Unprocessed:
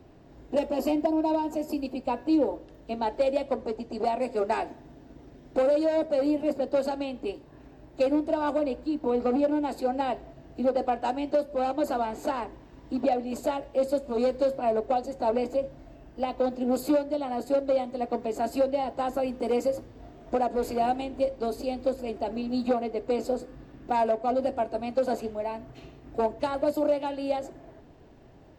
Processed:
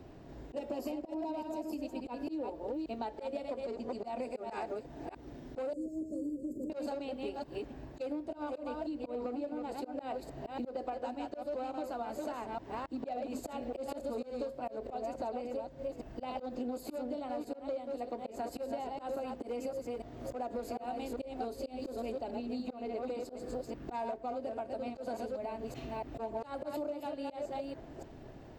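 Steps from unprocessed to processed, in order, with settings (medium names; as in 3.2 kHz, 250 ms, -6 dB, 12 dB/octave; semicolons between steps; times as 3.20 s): chunks repeated in reverse 286 ms, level -5 dB; 5.73–6.70 s: elliptic band-stop 390–7300 Hz, stop band 40 dB; slow attack 206 ms; compression 12:1, threshold -36 dBFS, peak gain reduction 18.5 dB; trim +1 dB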